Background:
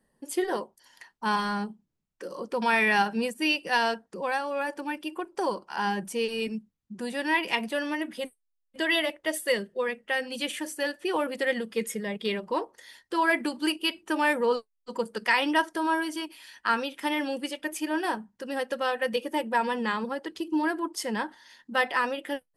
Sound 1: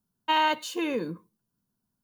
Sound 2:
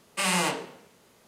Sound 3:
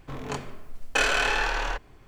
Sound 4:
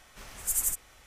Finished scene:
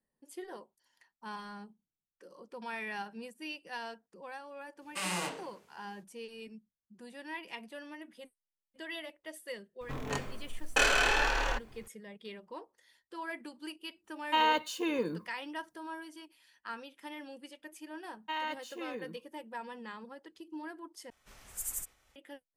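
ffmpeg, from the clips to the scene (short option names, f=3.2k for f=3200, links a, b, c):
-filter_complex "[1:a]asplit=2[a][b];[0:a]volume=-16.5dB[c];[3:a]highshelf=f=9.6k:g=6[d];[b]equalizer=f=1.9k:w=4.8:g=6.5[e];[4:a]agate=range=-33dB:threshold=-53dB:ratio=3:release=100:detection=peak[f];[c]asplit=2[g][h];[g]atrim=end=21.104[i];[f]atrim=end=1.06,asetpts=PTS-STARTPTS,volume=-9.5dB[j];[h]atrim=start=22.156[k];[2:a]atrim=end=1.27,asetpts=PTS-STARTPTS,volume=-9.5dB,afade=t=in:d=0.05,afade=t=out:st=1.22:d=0.05,adelay=4780[l];[d]atrim=end=2.07,asetpts=PTS-STARTPTS,volume=-3dB,afade=t=in:d=0.004:c=hsin,afade=t=out:st=2.066:d=0.004:c=hsin,adelay=9810[m];[a]atrim=end=2.03,asetpts=PTS-STARTPTS,volume=-3.5dB,afade=t=in:d=0.004:c=hsin,afade=t=out:st=2.026:d=0.004:c=hsin,adelay=14040[n];[e]atrim=end=2.03,asetpts=PTS-STARTPTS,volume=-13.5dB,afade=t=in:d=0.004:c=hsin,afade=t=out:st=2.026:d=0.004:c=hsin,adelay=18000[o];[i][j]acrossfade=d=0.004:c1=hsin:c2=hsin[p];[p][k]acrossfade=d=0.004:c1=hsin:c2=hsin[q];[q][l][m][n][o]amix=inputs=5:normalize=0"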